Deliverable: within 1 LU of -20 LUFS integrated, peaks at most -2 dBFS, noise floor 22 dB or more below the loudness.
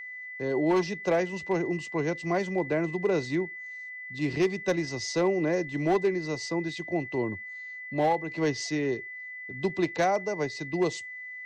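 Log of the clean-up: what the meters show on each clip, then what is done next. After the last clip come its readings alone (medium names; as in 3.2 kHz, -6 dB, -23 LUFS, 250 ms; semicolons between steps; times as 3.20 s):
clipped samples 0.6%; clipping level -18.0 dBFS; steady tone 2 kHz; tone level -38 dBFS; loudness -29.0 LUFS; peak level -18.0 dBFS; loudness target -20.0 LUFS
-> clip repair -18 dBFS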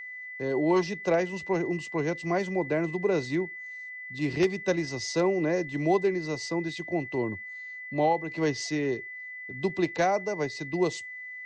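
clipped samples 0.0%; steady tone 2 kHz; tone level -38 dBFS
-> band-stop 2 kHz, Q 30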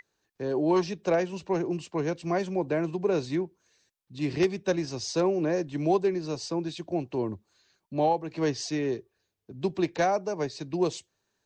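steady tone not found; loudness -29.0 LUFS; peak level -9.0 dBFS; loudness target -20.0 LUFS
-> trim +9 dB; peak limiter -2 dBFS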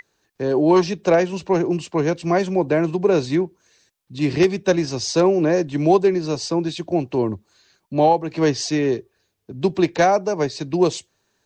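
loudness -20.0 LUFS; peak level -2.0 dBFS; noise floor -70 dBFS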